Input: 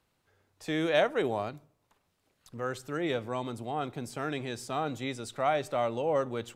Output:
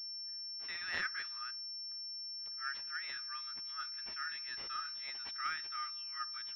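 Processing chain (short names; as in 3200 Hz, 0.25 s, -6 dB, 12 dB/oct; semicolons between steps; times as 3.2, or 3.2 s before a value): gliding pitch shift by +2 st ending unshifted; rippled Chebyshev high-pass 1200 Hz, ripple 6 dB; pulse-width modulation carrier 5400 Hz; gain +2.5 dB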